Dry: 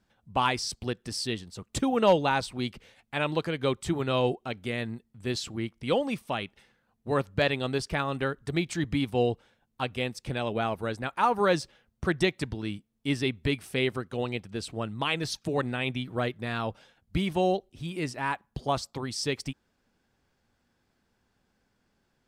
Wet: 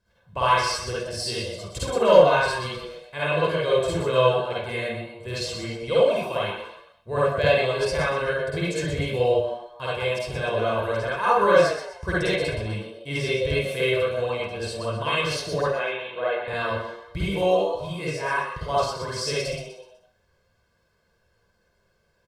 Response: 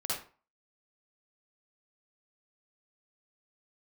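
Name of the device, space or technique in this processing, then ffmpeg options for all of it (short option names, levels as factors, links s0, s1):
microphone above a desk: -filter_complex "[0:a]asettb=1/sr,asplit=3[s0][s1][s2];[s0]atrim=end=15.614[s3];[s1]atrim=start=15.61:end=16.48,asetpts=PTS-STARTPTS,afade=t=in:d=0.004:c=qsin,afade=t=out:st=0.866:d=0.004:c=qsin,acrossover=split=290 3400:gain=0.0708 1 0.112[s4][s5][s6];[s4][s5][s6]amix=inputs=3:normalize=0[s7];[s2]atrim=start=16.476[s8];[s3][s7]acrossfade=d=0.004:c1=hsin:c2=qsin[s9];[s9][s8]acrossfade=d=0.004:c1=qsin:c2=hsin,asplit=5[s10][s11][s12][s13][s14];[s11]adelay=124,afreqshift=120,volume=0.398[s15];[s12]adelay=248,afreqshift=240,volume=0.148[s16];[s13]adelay=372,afreqshift=360,volume=0.0543[s17];[s14]adelay=496,afreqshift=480,volume=0.0202[s18];[s10][s15][s16][s17][s18]amix=inputs=5:normalize=0,aecho=1:1:1.9:0.77[s19];[1:a]atrim=start_sample=2205[s20];[s19][s20]afir=irnorm=-1:irlink=0,volume=0.841"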